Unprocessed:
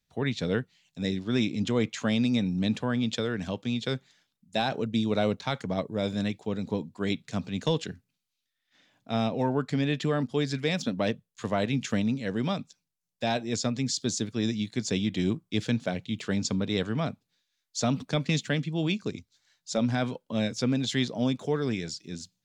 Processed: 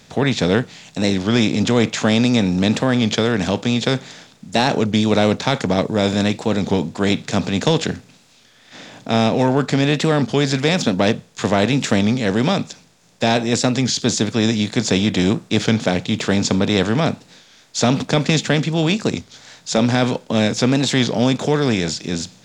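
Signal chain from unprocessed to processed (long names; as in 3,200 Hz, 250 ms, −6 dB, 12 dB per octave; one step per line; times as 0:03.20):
compressor on every frequency bin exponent 0.6
wow of a warped record 33 1/3 rpm, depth 100 cents
level +7.5 dB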